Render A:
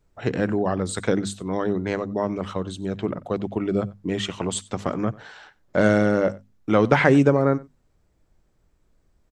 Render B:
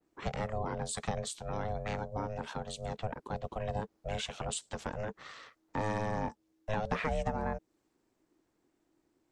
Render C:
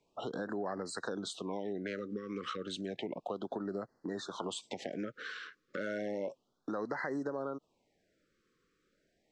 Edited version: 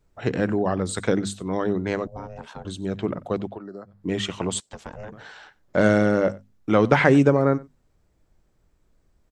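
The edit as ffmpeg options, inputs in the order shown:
-filter_complex "[1:a]asplit=2[s0][s1];[0:a]asplit=4[s2][s3][s4][s5];[s2]atrim=end=2.072[s6];[s0]atrim=start=2.068:end=2.652[s7];[s3]atrim=start=2.648:end=3.63[s8];[2:a]atrim=start=3.39:end=4.09[s9];[s4]atrim=start=3.85:end=4.602[s10];[s1]atrim=start=4.598:end=5.122[s11];[s5]atrim=start=5.118[s12];[s6][s7]acrossfade=d=0.004:c1=hsin:c2=hsin[s13];[s13][s8]acrossfade=d=0.004:c1=hsin:c2=hsin[s14];[s14][s9]acrossfade=d=0.24:c1=tri:c2=tri[s15];[s15][s10]acrossfade=d=0.24:c1=tri:c2=tri[s16];[s16][s11]acrossfade=d=0.004:c1=hsin:c2=hsin[s17];[s17][s12]acrossfade=d=0.004:c1=hsin:c2=hsin"

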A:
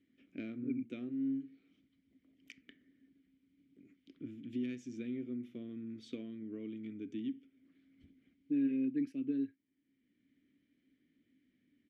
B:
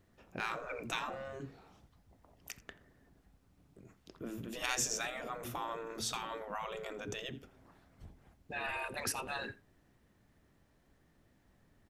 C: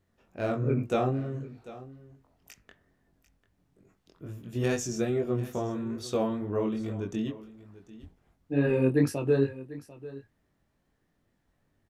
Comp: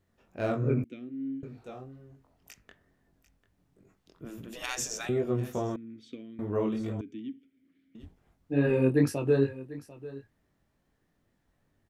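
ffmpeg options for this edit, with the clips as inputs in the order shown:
-filter_complex "[0:a]asplit=3[s0][s1][s2];[2:a]asplit=5[s3][s4][s5][s6][s7];[s3]atrim=end=0.842[s8];[s0]atrim=start=0.838:end=1.432[s9];[s4]atrim=start=1.428:end=4.252[s10];[1:a]atrim=start=4.248:end=5.092[s11];[s5]atrim=start=5.088:end=5.762[s12];[s1]atrim=start=5.758:end=6.392[s13];[s6]atrim=start=6.388:end=7.012[s14];[s2]atrim=start=7.008:end=7.952[s15];[s7]atrim=start=7.948[s16];[s8][s9]acrossfade=d=0.004:c1=hsin:c2=hsin[s17];[s17][s10]acrossfade=d=0.004:c1=hsin:c2=hsin[s18];[s18][s11]acrossfade=d=0.004:c1=hsin:c2=hsin[s19];[s19][s12]acrossfade=d=0.004:c1=hsin:c2=hsin[s20];[s20][s13]acrossfade=d=0.004:c1=hsin:c2=hsin[s21];[s21][s14]acrossfade=d=0.004:c1=hsin:c2=hsin[s22];[s22][s15]acrossfade=d=0.004:c1=hsin:c2=hsin[s23];[s23][s16]acrossfade=d=0.004:c1=hsin:c2=hsin"

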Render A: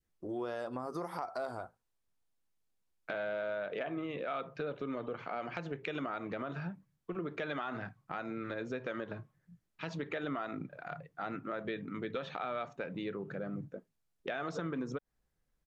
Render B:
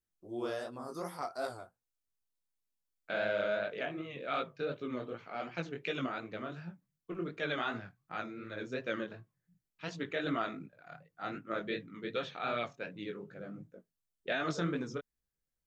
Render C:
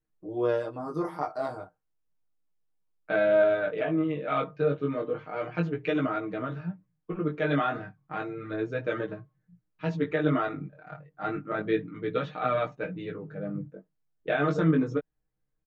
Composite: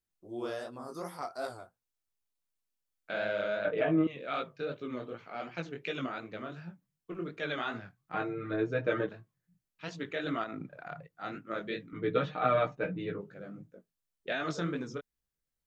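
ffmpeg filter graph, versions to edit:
-filter_complex "[2:a]asplit=3[s0][s1][s2];[1:a]asplit=5[s3][s4][s5][s6][s7];[s3]atrim=end=3.652[s8];[s0]atrim=start=3.648:end=4.072[s9];[s4]atrim=start=4.068:end=8.142[s10];[s1]atrim=start=8.138:end=9.092[s11];[s5]atrim=start=9.088:end=10.442[s12];[0:a]atrim=start=10.438:end=11.072[s13];[s6]atrim=start=11.068:end=11.932[s14];[s2]atrim=start=11.928:end=13.212[s15];[s7]atrim=start=13.208[s16];[s8][s9]acrossfade=d=0.004:c1=hsin:c2=hsin[s17];[s17][s10]acrossfade=d=0.004:c1=hsin:c2=hsin[s18];[s18][s11]acrossfade=d=0.004:c1=hsin:c2=hsin[s19];[s19][s12]acrossfade=d=0.004:c1=hsin:c2=hsin[s20];[s20][s13]acrossfade=d=0.004:c1=hsin:c2=hsin[s21];[s21][s14]acrossfade=d=0.004:c1=hsin:c2=hsin[s22];[s22][s15]acrossfade=d=0.004:c1=hsin:c2=hsin[s23];[s23][s16]acrossfade=d=0.004:c1=hsin:c2=hsin"

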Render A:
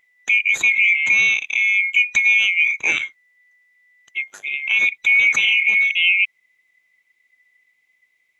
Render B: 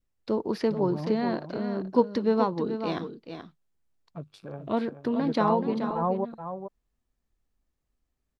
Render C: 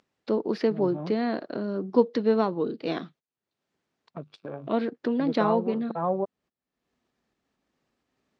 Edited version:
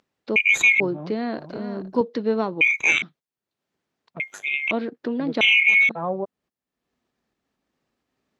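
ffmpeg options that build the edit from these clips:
-filter_complex "[0:a]asplit=4[s0][s1][s2][s3];[2:a]asplit=6[s4][s5][s6][s7][s8][s9];[s4]atrim=end=0.362[s10];[s0]atrim=start=0.358:end=0.802[s11];[s5]atrim=start=0.798:end=1.382[s12];[1:a]atrim=start=1.378:end=2.012[s13];[s6]atrim=start=2.008:end=2.612[s14];[s1]atrim=start=2.608:end=3.022[s15];[s7]atrim=start=3.018:end=4.202[s16];[s2]atrim=start=4.198:end=4.712[s17];[s8]atrim=start=4.708:end=5.412[s18];[s3]atrim=start=5.408:end=5.892[s19];[s9]atrim=start=5.888[s20];[s10][s11]acrossfade=d=0.004:c1=hsin:c2=hsin[s21];[s21][s12]acrossfade=d=0.004:c1=hsin:c2=hsin[s22];[s22][s13]acrossfade=d=0.004:c1=hsin:c2=hsin[s23];[s23][s14]acrossfade=d=0.004:c1=hsin:c2=hsin[s24];[s24][s15]acrossfade=d=0.004:c1=hsin:c2=hsin[s25];[s25][s16]acrossfade=d=0.004:c1=hsin:c2=hsin[s26];[s26][s17]acrossfade=d=0.004:c1=hsin:c2=hsin[s27];[s27][s18]acrossfade=d=0.004:c1=hsin:c2=hsin[s28];[s28][s19]acrossfade=d=0.004:c1=hsin:c2=hsin[s29];[s29][s20]acrossfade=d=0.004:c1=hsin:c2=hsin"

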